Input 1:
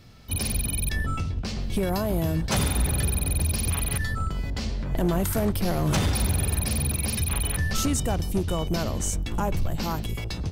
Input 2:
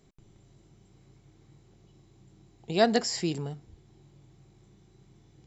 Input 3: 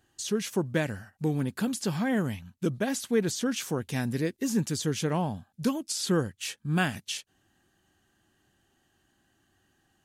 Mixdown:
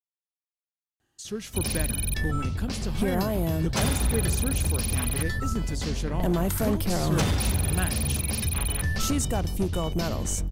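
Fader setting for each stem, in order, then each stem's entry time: −1.0 dB, muted, −5.0 dB; 1.25 s, muted, 1.00 s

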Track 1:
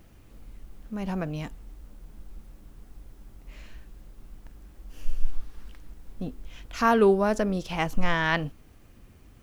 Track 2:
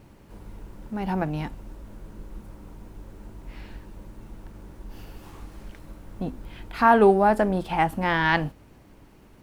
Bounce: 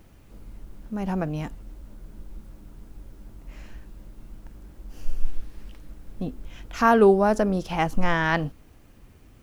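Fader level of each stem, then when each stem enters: +0.5, −10.0 decibels; 0.00, 0.00 seconds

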